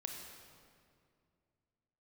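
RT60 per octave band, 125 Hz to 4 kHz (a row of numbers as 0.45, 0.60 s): 2.9, 2.8, 2.5, 2.1, 1.9, 1.6 s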